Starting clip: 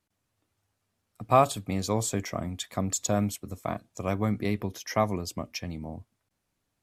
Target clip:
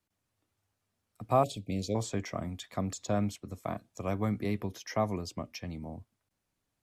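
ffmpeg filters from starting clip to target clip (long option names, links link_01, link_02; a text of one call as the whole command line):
ffmpeg -i in.wav -filter_complex "[0:a]asettb=1/sr,asplit=3[link_01][link_02][link_03];[link_01]atrim=end=1.434[link_04];[link_02]atrim=start=1.43:end=1.95,asetpts=PTS-STARTPTS,afade=type=in:duration=0.004:curve=qsin,afade=type=out:start_time=0.516:duration=0.004:curve=qsin,asuperstop=centerf=1200:order=8:qfactor=0.72[link_05];[link_03]atrim=start=1.946[link_06];[link_04][link_05]acrossfade=duration=0.004:curve1=hsin:curve2=qsin[link_07];[link_07][link_06]acrossfade=duration=0.004:curve1=qsin:curve2=hsin,acrossover=split=230|1000|6600[link_08][link_09][link_10][link_11];[link_10]alimiter=level_in=4dB:limit=-24dB:level=0:latency=1:release=60,volume=-4dB[link_12];[link_11]acompressor=threshold=-54dB:ratio=6[link_13];[link_08][link_09][link_12][link_13]amix=inputs=4:normalize=0,volume=-3.5dB" out.wav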